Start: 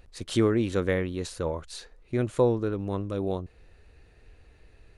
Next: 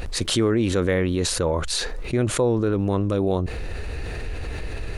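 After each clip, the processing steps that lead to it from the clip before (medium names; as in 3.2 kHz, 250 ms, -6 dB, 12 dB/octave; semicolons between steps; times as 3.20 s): level flattener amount 70%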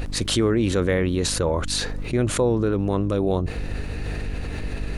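mains buzz 50 Hz, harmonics 6, -34 dBFS -4 dB/octave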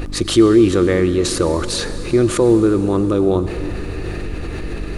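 small resonant body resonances 340/1200 Hz, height 11 dB, ringing for 45 ms; on a send at -11.5 dB: reverberation RT60 4.2 s, pre-delay 73 ms; on the sum: trim +2.5 dB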